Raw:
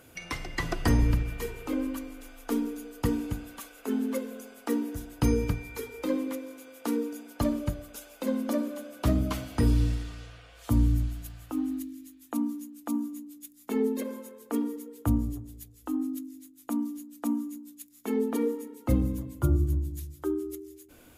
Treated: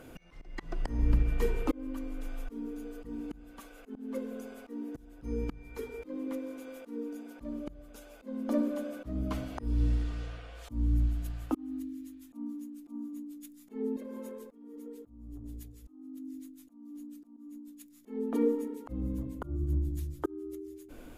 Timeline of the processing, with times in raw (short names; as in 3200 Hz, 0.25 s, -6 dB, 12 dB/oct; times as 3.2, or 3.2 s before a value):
13.96–17.37 compressor, threshold -39 dBFS
whole clip: tilt -2.5 dB/oct; auto swell 0.732 s; bell 94 Hz -12 dB 1.2 oct; gain +3.5 dB